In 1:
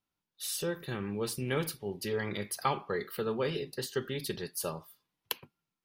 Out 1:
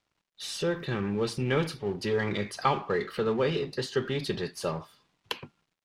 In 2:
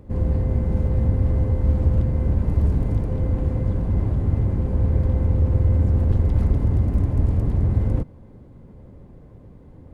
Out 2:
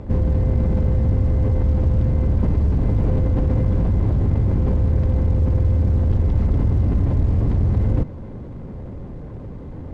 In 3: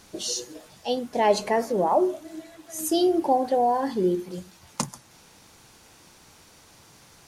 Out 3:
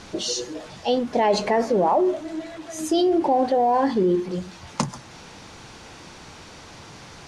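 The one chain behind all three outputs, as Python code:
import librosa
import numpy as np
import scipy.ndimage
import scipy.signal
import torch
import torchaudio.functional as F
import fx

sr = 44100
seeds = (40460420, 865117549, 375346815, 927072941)

p1 = fx.law_mismatch(x, sr, coded='mu')
p2 = fx.over_compress(p1, sr, threshold_db=-24.0, ratio=-1.0)
p3 = p1 + F.gain(torch.from_numpy(p2), 1.5).numpy()
p4 = fx.air_absorb(p3, sr, metres=92.0)
y = F.gain(torch.from_numpy(p4), -2.5).numpy()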